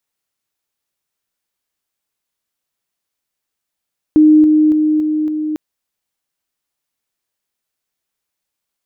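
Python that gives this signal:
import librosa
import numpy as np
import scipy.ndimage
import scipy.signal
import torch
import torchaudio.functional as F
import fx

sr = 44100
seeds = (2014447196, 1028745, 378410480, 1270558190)

y = fx.level_ladder(sr, hz=307.0, from_db=-4.5, step_db=-3.0, steps=5, dwell_s=0.28, gap_s=0.0)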